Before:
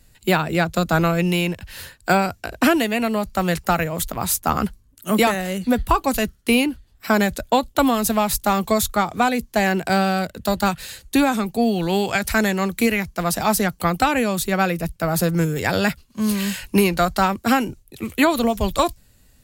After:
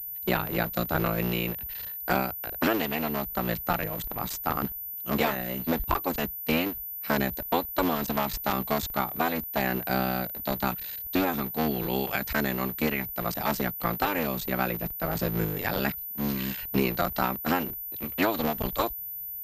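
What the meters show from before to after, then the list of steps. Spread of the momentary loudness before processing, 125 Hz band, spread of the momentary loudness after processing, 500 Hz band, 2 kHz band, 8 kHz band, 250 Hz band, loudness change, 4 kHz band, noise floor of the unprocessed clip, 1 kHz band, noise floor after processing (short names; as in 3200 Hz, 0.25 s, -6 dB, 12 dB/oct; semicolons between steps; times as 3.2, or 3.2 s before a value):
6 LU, -8.0 dB, 4 LU, -8.5 dB, -8.5 dB, -15.5 dB, -9.5 dB, -8.0 dB, -8.5 dB, -56 dBFS, -8.5 dB, -37 dBFS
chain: cycle switcher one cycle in 3, muted; pulse-width modulation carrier 14000 Hz; gain -7 dB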